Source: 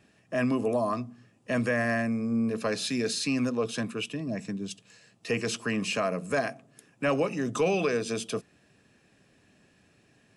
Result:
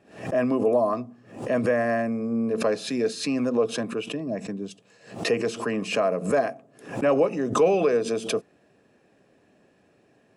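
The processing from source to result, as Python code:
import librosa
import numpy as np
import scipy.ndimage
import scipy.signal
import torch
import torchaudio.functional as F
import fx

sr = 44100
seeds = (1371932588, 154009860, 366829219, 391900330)

y = fx.peak_eq(x, sr, hz=530.0, db=13.5, octaves=2.7)
y = fx.pre_swell(y, sr, db_per_s=120.0)
y = y * librosa.db_to_amplitude(-6.5)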